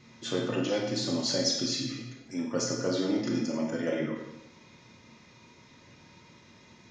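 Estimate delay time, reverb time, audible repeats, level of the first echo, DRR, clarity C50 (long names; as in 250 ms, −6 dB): no echo audible, 0.90 s, no echo audible, no echo audible, 0.0 dB, 3.5 dB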